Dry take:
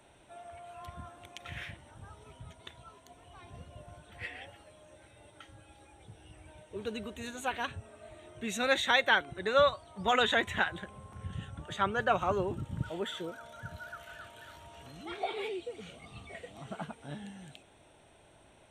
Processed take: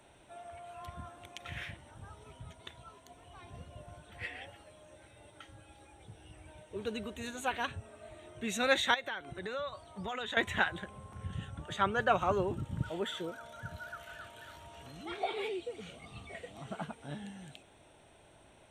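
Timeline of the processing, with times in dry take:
0:08.94–0:10.37: downward compressor 4 to 1, threshold −37 dBFS

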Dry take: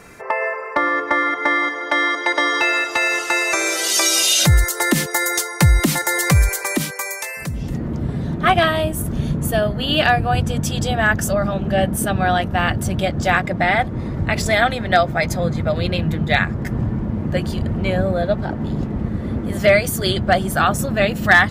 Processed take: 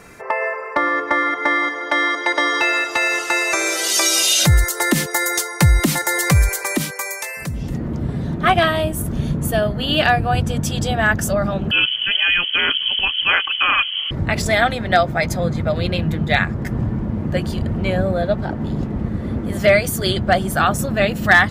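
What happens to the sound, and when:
0:11.71–0:14.11: voice inversion scrambler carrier 3,200 Hz

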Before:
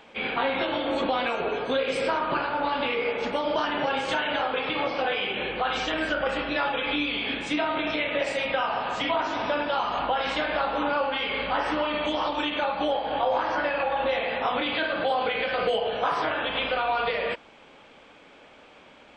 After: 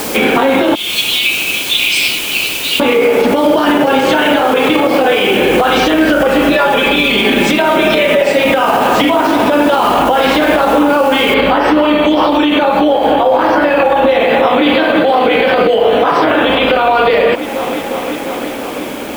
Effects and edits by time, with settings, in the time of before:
0:00.75–0:02.80: Butterworth high-pass 2,300 Hz 72 dB per octave
0:06.51–0:08.34: comb filter 5.1 ms, depth 77%
0:11.34: noise floor change −47 dB −59 dB
0:13.97–0:14.65: delay throw 350 ms, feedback 80%, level −7.5 dB
whole clip: parametric band 310 Hz +10.5 dB 1.7 octaves; downward compressor, threshold −29 dBFS; boost into a limiter +25 dB; level −1 dB

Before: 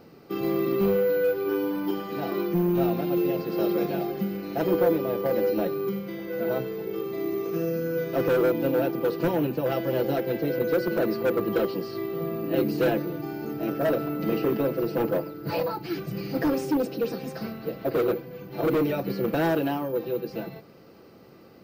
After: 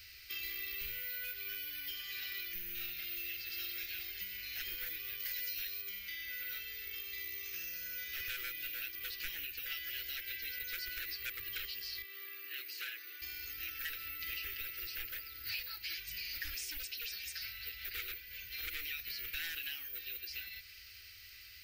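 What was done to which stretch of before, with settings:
0:05.20–0:05.82: parametric band 8,600 Hz +9 dB 2.2 octaves
0:12.02–0:13.22: Chebyshev high-pass with heavy ripple 300 Hz, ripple 9 dB
whole clip: inverse Chebyshev band-stop filter 130–1,100 Hz, stop band 40 dB; low-shelf EQ 130 Hz −4 dB; downward compressor 2.5 to 1, threshold −54 dBFS; level +11 dB

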